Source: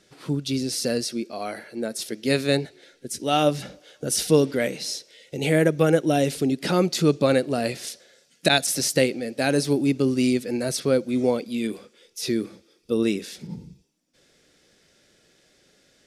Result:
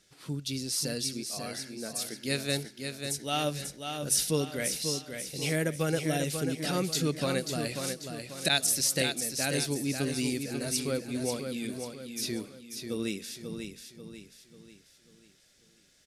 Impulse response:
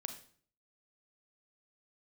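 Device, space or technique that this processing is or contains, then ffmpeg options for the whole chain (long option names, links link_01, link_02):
smiley-face EQ: -af "lowshelf=frequency=87:gain=5.5,equalizer=frequency=410:width_type=o:width=2.6:gain=-6,highshelf=frequency=5700:gain=7.5,aecho=1:1:540|1080|1620|2160|2700:0.473|0.199|0.0835|0.0351|0.0147,volume=-6.5dB"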